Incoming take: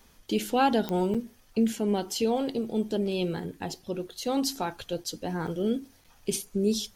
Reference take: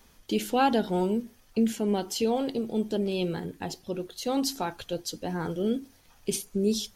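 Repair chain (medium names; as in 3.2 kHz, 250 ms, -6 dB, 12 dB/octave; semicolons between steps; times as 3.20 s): de-click; interpolate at 1.14/5.04/5.47/6.04 s, 5.9 ms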